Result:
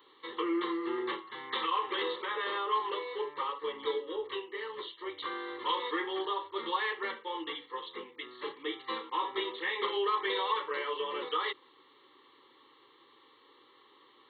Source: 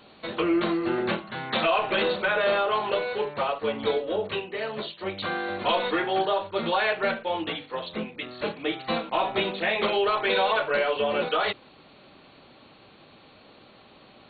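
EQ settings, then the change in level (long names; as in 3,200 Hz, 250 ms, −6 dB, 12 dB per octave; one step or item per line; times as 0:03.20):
high-pass filter 400 Hz 12 dB per octave
phaser with its sweep stopped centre 990 Hz, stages 8
phaser with its sweep stopped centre 2,500 Hz, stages 6
+1.0 dB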